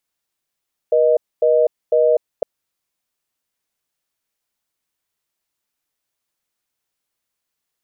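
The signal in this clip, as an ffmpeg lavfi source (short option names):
-f lavfi -i "aevalsrc='0.2*(sin(2*PI*480*t)+sin(2*PI*620*t))*clip(min(mod(t,0.5),0.25-mod(t,0.5))/0.005,0,1)':d=1.51:s=44100"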